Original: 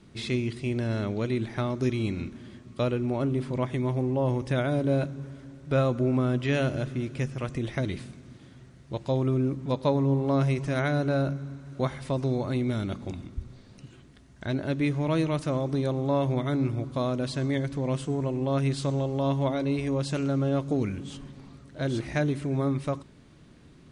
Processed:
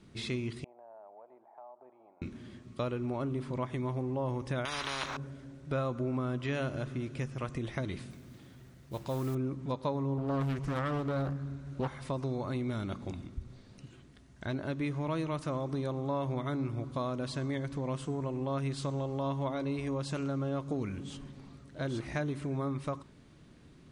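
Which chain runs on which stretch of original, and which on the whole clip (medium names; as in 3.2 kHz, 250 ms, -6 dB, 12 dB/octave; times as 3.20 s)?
0.64–2.22 s: Butterworth band-pass 780 Hz, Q 2.7 + distance through air 230 m + compression 2.5:1, threshold -46 dBFS
4.65–5.17 s: peaking EQ 8.8 kHz -13.5 dB 0.68 oct + spectrum-flattening compressor 10:1
8.10–9.35 s: transient shaper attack -3 dB, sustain +3 dB + overload inside the chain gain 21 dB + modulation noise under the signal 21 dB
10.18–11.88 s: bass shelf 86 Hz +12 dB + loudspeaker Doppler distortion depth 0.72 ms
whole clip: dynamic bell 1.1 kHz, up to +6 dB, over -48 dBFS, Q 1.8; compression 2:1, threshold -30 dBFS; trim -3.5 dB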